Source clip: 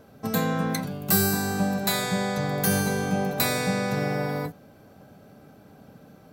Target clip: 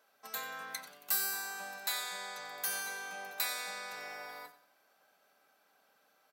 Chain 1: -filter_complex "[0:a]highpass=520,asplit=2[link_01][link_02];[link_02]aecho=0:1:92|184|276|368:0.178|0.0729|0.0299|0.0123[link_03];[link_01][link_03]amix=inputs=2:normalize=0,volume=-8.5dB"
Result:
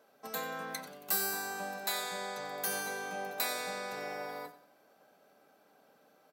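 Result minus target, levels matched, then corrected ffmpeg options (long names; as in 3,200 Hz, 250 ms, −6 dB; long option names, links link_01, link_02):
500 Hz band +9.0 dB
-filter_complex "[0:a]highpass=1100,asplit=2[link_01][link_02];[link_02]aecho=0:1:92|184|276|368:0.178|0.0729|0.0299|0.0123[link_03];[link_01][link_03]amix=inputs=2:normalize=0,volume=-8.5dB"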